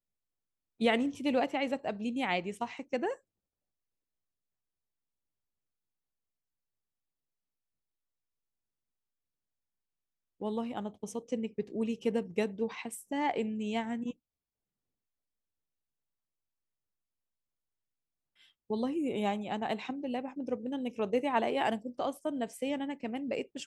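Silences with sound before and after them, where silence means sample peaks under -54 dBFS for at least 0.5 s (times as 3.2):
3.17–10.4
14.12–18.4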